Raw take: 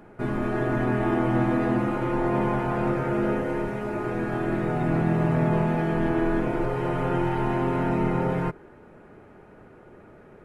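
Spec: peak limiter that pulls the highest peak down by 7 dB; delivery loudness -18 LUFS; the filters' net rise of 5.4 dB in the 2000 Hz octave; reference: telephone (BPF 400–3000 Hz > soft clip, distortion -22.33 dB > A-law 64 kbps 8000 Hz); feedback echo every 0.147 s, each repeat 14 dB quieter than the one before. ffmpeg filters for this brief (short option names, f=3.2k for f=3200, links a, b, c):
-af "equalizer=f=2k:t=o:g=8,alimiter=limit=-17.5dB:level=0:latency=1,highpass=400,lowpass=3k,aecho=1:1:147|294:0.2|0.0399,asoftclip=threshold=-21dB,volume=13dB" -ar 8000 -c:a pcm_alaw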